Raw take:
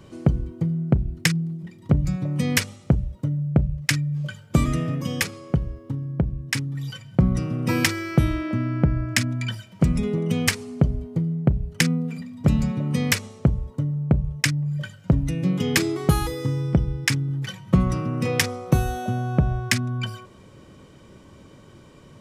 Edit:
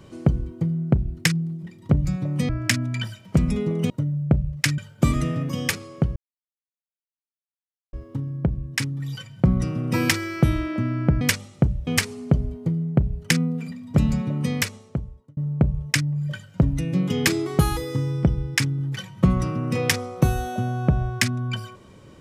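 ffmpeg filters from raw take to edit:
-filter_complex "[0:a]asplit=8[a][b][c][d][e][f][g][h];[a]atrim=end=2.492[i];[b]atrim=start=8.958:end=10.372[j];[c]atrim=start=3.148:end=4.032[k];[d]atrim=start=4.298:end=5.68,asetpts=PTS-STARTPTS,afade=t=out:st=1.378:d=0.004:c=hsin,apad=pad_dur=1.77[l];[e]atrim=start=5.68:end=8.962,asetpts=PTS-STARTPTS,afade=t=in:d=0.004:c=hsin[m];[f]atrim=start=2.488:end=3.152[n];[g]atrim=start=10.368:end=13.87,asetpts=PTS-STARTPTS,afade=t=out:st=2.452:d=1.05[o];[h]atrim=start=13.87,asetpts=PTS-STARTPTS,afade=t=in:d=0.004:c=hsin[p];[i][j]acrossfade=d=0.004:c1=hsin:c2=hsin[q];[q][k]acrossfade=d=0.004:c1=hsin:c2=hsin[r];[l][m]concat=n=2:v=0:a=1[s];[r][s]acrossfade=d=0.004:c1=hsin:c2=hsin[t];[t][n]acrossfade=d=0.004:c1=hsin:c2=hsin[u];[o][p]concat=n=2:v=0:a=1[v];[u][v]acrossfade=d=0.004:c1=hsin:c2=hsin"

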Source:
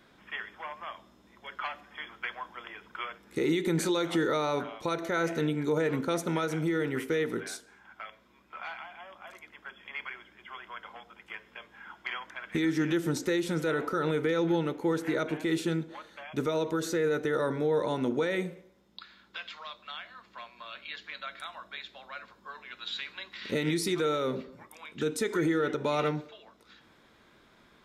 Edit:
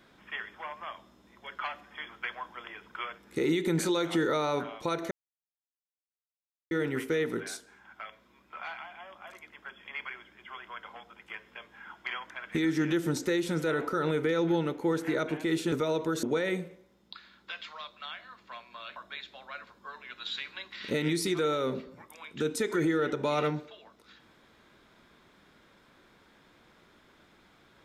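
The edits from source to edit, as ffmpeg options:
-filter_complex "[0:a]asplit=6[a][b][c][d][e][f];[a]atrim=end=5.11,asetpts=PTS-STARTPTS,afade=t=out:st=5.106:d=0.004:c=hsin[g];[b]atrim=start=5.11:end=6.71,asetpts=PTS-STARTPTS,volume=0[h];[c]atrim=start=6.71:end=15.722,asetpts=PTS-STARTPTS,afade=t=in:d=0.004:c=hsin[i];[d]atrim=start=16.378:end=16.892[j];[e]atrim=start=18.088:end=20.822[k];[f]atrim=start=21.568[l];[g][h][i]concat=n=3:v=0:a=1[m];[m][j]acrossfade=d=0.004:c1=hsin:c2=hsin[n];[n][k]acrossfade=d=0.004:c1=hsin:c2=hsin[o];[o][l]acrossfade=d=0.004:c1=hsin:c2=hsin"

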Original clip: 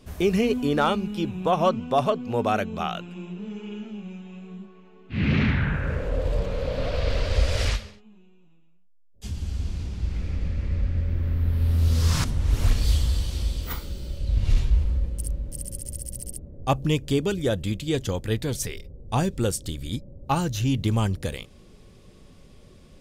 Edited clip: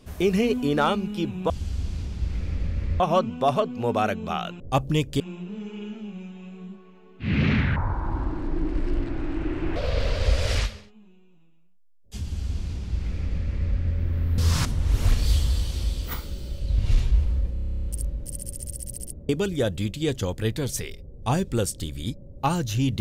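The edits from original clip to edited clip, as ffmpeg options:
-filter_complex "[0:a]asplit=20[a][b][c][d][e][f][g][h][i][j][k][l][m][n][o][p][q][r][s][t];[a]atrim=end=1.502[u];[b]atrim=start=9.308:end=10.812[v];[c]atrim=start=1.498:end=3.102[w];[d]atrim=start=16.548:end=17.152[x];[e]atrim=start=3.098:end=5.664[y];[f]atrim=start=5.66:end=6.86,asetpts=PTS-STARTPTS,asetrate=26460,aresample=44100[z];[g]atrim=start=6.856:end=11.482[aa];[h]atrim=start=11.968:end=15.152[ab];[i]atrim=start=15.118:end=15.152[ac];[j]atrim=start=15.118:end=15.152[ad];[k]atrim=start=15.118:end=15.152[ae];[l]atrim=start=15.118:end=15.152[af];[m]atrim=start=15.118:end=15.152[ag];[n]atrim=start=15.118:end=15.152[ah];[o]atrim=start=15.118:end=15.152[ai];[p]atrim=start=15.118:end=15.152[aj];[q]atrim=start=15.118:end=15.152[ak];[r]atrim=start=15.118:end=15.152[al];[s]atrim=start=15.118:end=16.552[am];[t]atrim=start=17.148[an];[u][v]acrossfade=d=0.004:c1=hsin:c2=hsin[ao];[ao][w]acrossfade=d=0.004:c1=hsin:c2=hsin[ap];[ap][x]acrossfade=d=0.004:c1=hsin:c2=hsin[aq];[aq][y]acrossfade=d=0.004:c1=hsin:c2=hsin[ar];[ar][z]acrossfade=d=0.004:c1=hsin:c2=hsin[as];[as][aa]acrossfade=d=0.004:c1=hsin:c2=hsin[at];[at][ab]acrossfade=d=0.004:c1=hsin:c2=hsin[au];[au][ac]acrossfade=d=0.004:c1=hsin:c2=hsin[av];[av][ad]acrossfade=d=0.004:c1=hsin:c2=hsin[aw];[aw][ae]acrossfade=d=0.004:c1=hsin:c2=hsin[ax];[ax][af]acrossfade=d=0.004:c1=hsin:c2=hsin[ay];[ay][ag]acrossfade=d=0.004:c1=hsin:c2=hsin[az];[az][ah]acrossfade=d=0.004:c1=hsin:c2=hsin[ba];[ba][ai]acrossfade=d=0.004:c1=hsin:c2=hsin[bb];[bb][aj]acrossfade=d=0.004:c1=hsin:c2=hsin[bc];[bc][ak]acrossfade=d=0.004:c1=hsin:c2=hsin[bd];[bd][al]acrossfade=d=0.004:c1=hsin:c2=hsin[be];[be][am]acrossfade=d=0.004:c1=hsin:c2=hsin[bf];[bf][an]acrossfade=d=0.004:c1=hsin:c2=hsin"

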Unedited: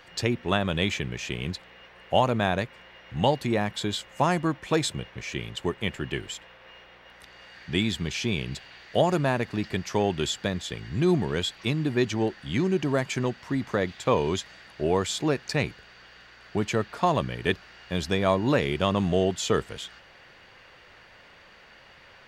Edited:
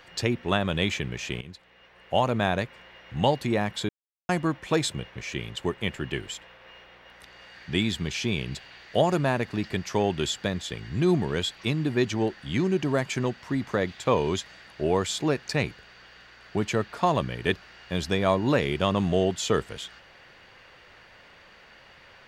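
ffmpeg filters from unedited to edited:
-filter_complex "[0:a]asplit=4[a][b][c][d];[a]atrim=end=1.41,asetpts=PTS-STARTPTS,afade=t=out:st=1.406:d=0.004:c=hsin:silence=0.188365[e];[b]atrim=start=1.41:end=3.89,asetpts=PTS-STARTPTS,afade=t=in:d=1:silence=0.188365,afade=t=out:st=2.476:d=0.004:c=hsin[f];[c]atrim=start=3.89:end=4.29,asetpts=PTS-STARTPTS,volume=0[g];[d]atrim=start=4.29,asetpts=PTS-STARTPTS,afade=t=in:d=0.004:c=hsin[h];[e][f][g][h]concat=n=4:v=0:a=1"

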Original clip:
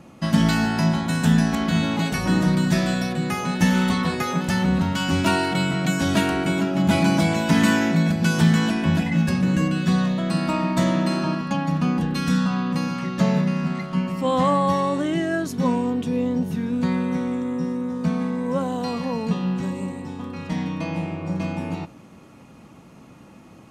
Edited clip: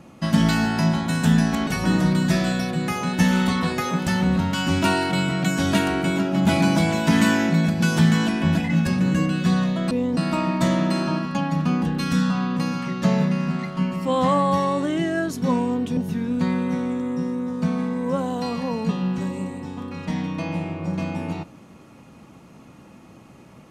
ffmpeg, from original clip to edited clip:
-filter_complex "[0:a]asplit=5[a][b][c][d][e];[a]atrim=end=1.672[f];[b]atrim=start=2.088:end=10.332[g];[c]atrim=start=16.128:end=16.392[h];[d]atrim=start=10.328:end=16.132[i];[e]atrim=start=16.388[j];[f][g]acrossfade=d=0.004:c1=hsin:c2=hsin[k];[k][h]acrossfade=d=0.004:c1=hsin:c2=hsin[l];[l][i]acrossfade=d=0.004:c1=hsin:c2=hsin[m];[m][j]acrossfade=d=0.004:c1=hsin:c2=hsin"

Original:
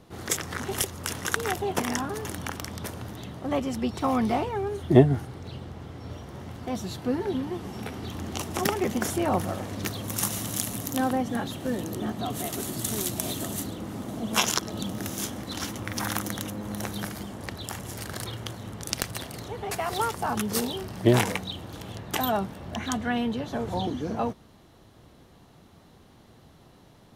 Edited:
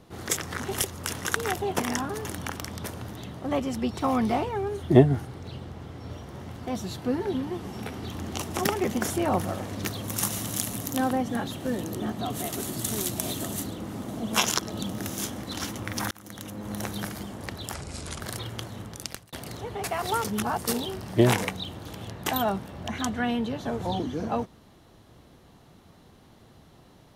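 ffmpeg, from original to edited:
-filter_complex "[0:a]asplit=7[a][b][c][d][e][f][g];[a]atrim=end=16.11,asetpts=PTS-STARTPTS,afade=t=out:st=16.106:d=0.004:c=hsin[h];[b]atrim=start=16.11:end=17.744,asetpts=PTS-STARTPTS,afade=t=in:d=0.63[i];[c]atrim=start=17.74:end=18.08,asetpts=PTS-STARTPTS,asetrate=32193,aresample=44100[j];[d]atrim=start=18.076:end=19.2,asetpts=PTS-STARTPTS,afade=t=out:st=0.584:d=0.54[k];[e]atrim=start=19.2:end=20.122,asetpts=PTS-STARTPTS,afade=t=in:d=0.004:c=hsin[l];[f]atrim=start=20.118:end=20.552,asetpts=PTS-STARTPTS,areverse[m];[g]atrim=start=20.548[n];[h][i]concat=n=2:v=0:a=1[o];[o][j]acrossfade=d=0.004:c1=hsin:c2=hsin[p];[k][l]concat=n=2:v=0:a=1[q];[p][q]acrossfade=d=0.004:c1=hsin:c2=hsin[r];[r][m]acrossfade=d=0.004:c1=hsin:c2=hsin[s];[s][n]acrossfade=d=0.004:c1=hsin:c2=hsin"

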